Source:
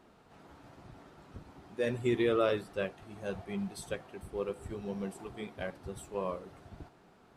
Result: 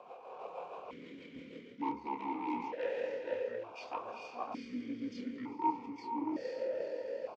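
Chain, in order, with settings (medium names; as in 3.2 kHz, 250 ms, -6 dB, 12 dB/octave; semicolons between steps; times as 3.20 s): rotary cabinet horn 6.3 Hz; dynamic bell 600 Hz, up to -5 dB, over -47 dBFS, Q 2.4; in parallel at -3.5 dB: sine folder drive 15 dB, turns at -19.5 dBFS; on the sum: tilt EQ +3 dB/octave; echo that smears into a reverb 478 ms, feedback 42%, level -7.5 dB; pitch shift -9.5 st; reverse; compression 6:1, threshold -34 dBFS, peak gain reduction 13.5 dB; reverse; doubling 29 ms -6.5 dB; small resonant body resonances 500/930 Hz, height 17 dB, ringing for 30 ms; stepped vowel filter 1.1 Hz; trim +2 dB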